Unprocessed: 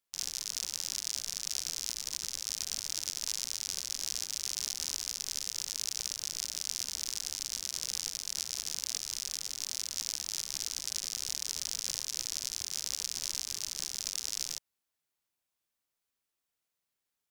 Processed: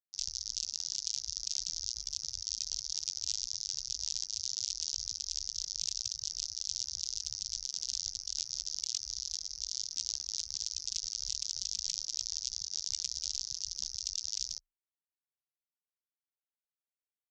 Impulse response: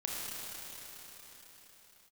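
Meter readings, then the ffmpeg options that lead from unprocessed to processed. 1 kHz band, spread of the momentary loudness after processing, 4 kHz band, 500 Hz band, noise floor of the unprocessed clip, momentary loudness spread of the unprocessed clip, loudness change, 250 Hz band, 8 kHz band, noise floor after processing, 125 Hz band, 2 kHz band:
below −15 dB, 2 LU, 0.0 dB, below −15 dB, below −85 dBFS, 1 LU, −1.0 dB, below −10 dB, −1.5 dB, below −85 dBFS, can't be measured, −14.5 dB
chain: -af "lowpass=frequency=3400:poles=1,afftdn=noise_reduction=26:noise_floor=-44,afreqshift=25,volume=8dB"

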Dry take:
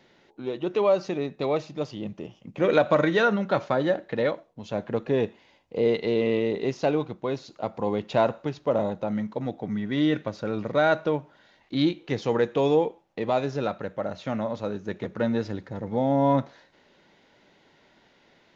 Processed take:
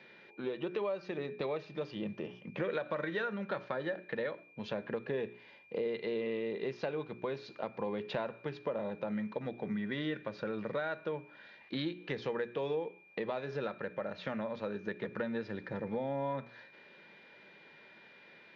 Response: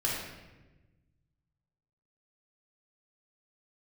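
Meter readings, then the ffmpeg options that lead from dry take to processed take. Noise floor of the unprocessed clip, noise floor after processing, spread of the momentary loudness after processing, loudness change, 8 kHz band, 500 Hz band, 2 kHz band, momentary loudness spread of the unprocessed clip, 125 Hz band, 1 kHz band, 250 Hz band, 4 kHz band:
−61 dBFS, −58 dBFS, 18 LU, −12.0 dB, can't be measured, −11.5 dB, −8.5 dB, 11 LU, −13.0 dB, −13.0 dB, −12.0 dB, −10.0 dB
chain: -af "highpass=190,equalizer=frequency=280:width_type=q:width=4:gain=-9,equalizer=frequency=720:width_type=q:width=4:gain=-6,equalizer=frequency=1700:width_type=q:width=4:gain=7,lowpass=frequency=4600:width=0.5412,lowpass=frequency=4600:width=1.3066,bandreject=frequency=60:width_type=h:width=6,bandreject=frequency=120:width_type=h:width=6,bandreject=frequency=180:width_type=h:width=6,bandreject=frequency=240:width_type=h:width=6,bandreject=frequency=300:width_type=h:width=6,bandreject=frequency=360:width_type=h:width=6,bandreject=frequency=420:width_type=h:width=6,acompressor=threshold=-37dB:ratio=4,lowshelf=frequency=470:gain=4,aeval=exprs='val(0)+0.00112*sin(2*PI*2400*n/s)':channel_layout=same"

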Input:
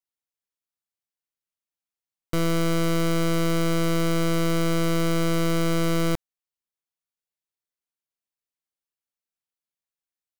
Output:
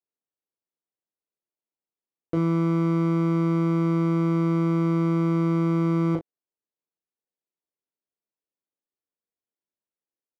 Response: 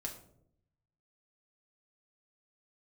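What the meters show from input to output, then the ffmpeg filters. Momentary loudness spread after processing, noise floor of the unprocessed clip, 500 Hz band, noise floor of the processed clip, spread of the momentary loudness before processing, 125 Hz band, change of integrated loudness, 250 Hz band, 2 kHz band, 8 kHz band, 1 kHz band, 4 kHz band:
2 LU, below −85 dBFS, −2.5 dB, below −85 dBFS, 2 LU, +3.0 dB, +1.0 dB, +3.0 dB, −9.0 dB, below −20 dB, −1.5 dB, below −15 dB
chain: -filter_complex "[0:a]bandpass=frequency=360:width_type=q:width=1.2:csg=0,asplit=2[link_01][link_02];[link_02]adelay=19,volume=-8dB[link_03];[link_01][link_03]amix=inputs=2:normalize=0,asplit=2[link_04][link_05];[link_05]aecho=0:1:17|37:0.211|0.473[link_06];[link_04][link_06]amix=inputs=2:normalize=0,volume=5dB"

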